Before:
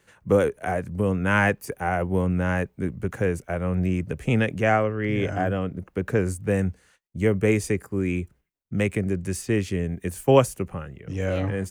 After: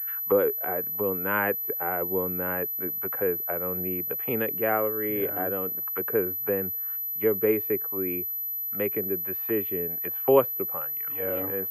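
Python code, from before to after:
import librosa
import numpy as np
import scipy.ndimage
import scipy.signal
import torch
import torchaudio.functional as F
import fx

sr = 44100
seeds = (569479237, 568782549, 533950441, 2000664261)

y = fx.band_shelf(x, sr, hz=2000.0, db=12.0, octaves=2.5)
y = fx.auto_wah(y, sr, base_hz=420.0, top_hz=1600.0, q=2.1, full_db=-20.0, direction='down')
y = fx.pwm(y, sr, carrier_hz=12000.0)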